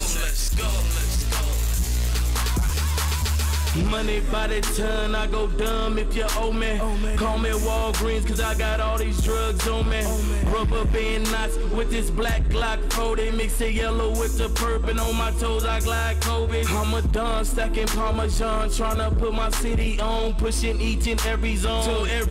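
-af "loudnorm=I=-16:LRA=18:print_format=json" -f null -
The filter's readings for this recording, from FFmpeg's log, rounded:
"input_i" : "-24.1",
"input_tp" : "-16.5",
"input_lra" : "0.9",
"input_thresh" : "-34.1",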